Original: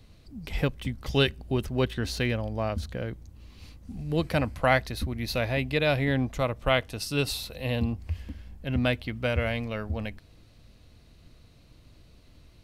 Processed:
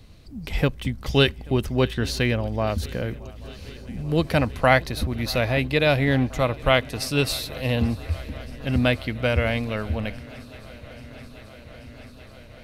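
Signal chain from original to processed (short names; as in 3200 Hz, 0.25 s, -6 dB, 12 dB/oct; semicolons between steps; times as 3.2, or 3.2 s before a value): 2.67–3.15 high shelf 10000 Hz +11 dB; swung echo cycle 0.834 s, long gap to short 3:1, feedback 78%, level -23 dB; gain +5 dB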